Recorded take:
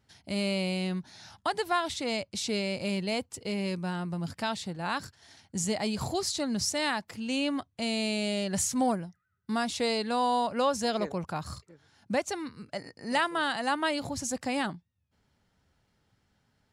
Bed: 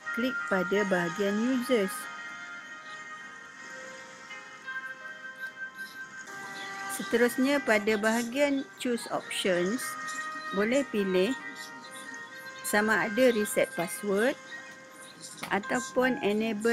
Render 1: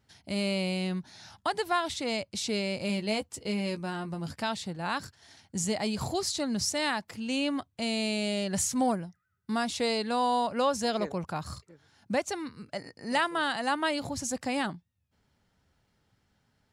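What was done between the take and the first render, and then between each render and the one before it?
0:02.88–0:04.38: double-tracking delay 14 ms −8 dB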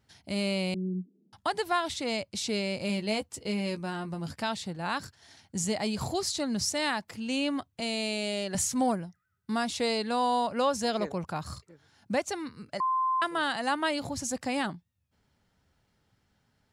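0:00.74–0:01.33: Chebyshev band-pass filter 180–450 Hz, order 4
0:07.80–0:08.55: high-pass filter 240 Hz
0:12.80–0:13.22: beep over 1,040 Hz −24 dBFS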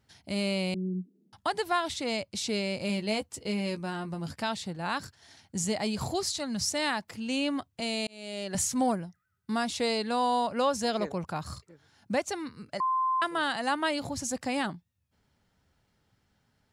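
0:06.28–0:06.71: parametric band 370 Hz −10 dB
0:08.07–0:08.57: fade in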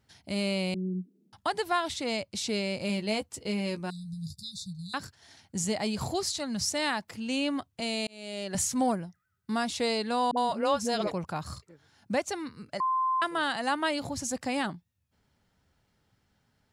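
0:03.90–0:04.94: linear-phase brick-wall band-stop 200–3,500 Hz
0:10.31–0:11.11: all-pass dispersion highs, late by 61 ms, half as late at 420 Hz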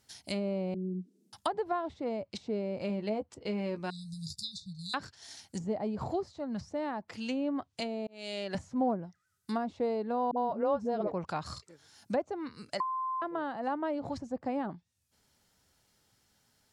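bass and treble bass −5 dB, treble +12 dB
treble cut that deepens with the level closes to 740 Hz, closed at −26 dBFS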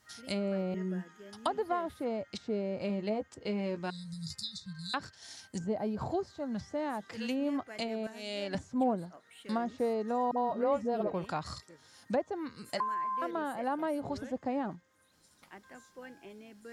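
mix in bed −22.5 dB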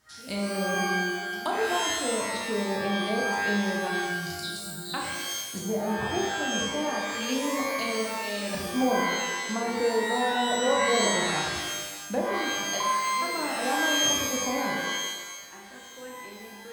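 flutter between parallel walls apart 5.8 metres, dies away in 0.29 s
reverb with rising layers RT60 1.2 s, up +12 semitones, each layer −2 dB, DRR −0.5 dB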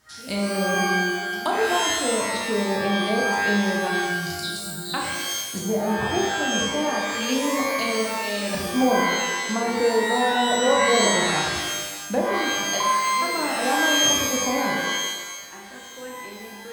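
level +5 dB

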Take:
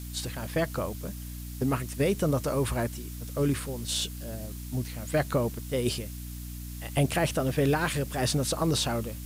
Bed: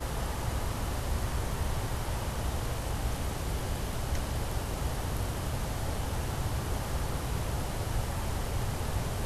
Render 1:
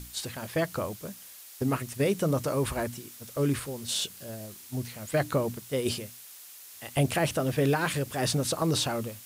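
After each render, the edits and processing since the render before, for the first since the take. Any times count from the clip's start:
mains-hum notches 60/120/180/240/300 Hz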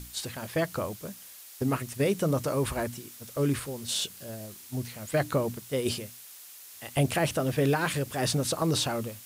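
no processing that can be heard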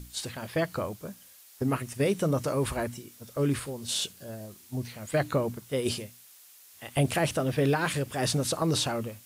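noise reduction from a noise print 6 dB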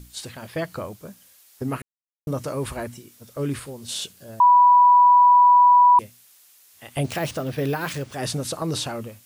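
0:01.82–0:02.27: silence
0:04.40–0:05.99: beep over 982 Hz −10 dBFS
0:07.04–0:08.15: bad sample-rate conversion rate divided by 3×, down none, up hold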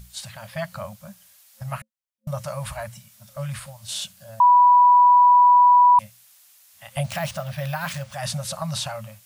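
brick-wall band-stop 220–530 Hz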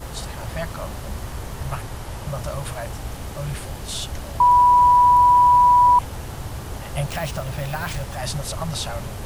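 mix in bed +0.5 dB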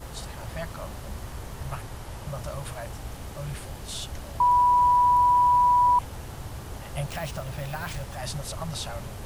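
level −6 dB

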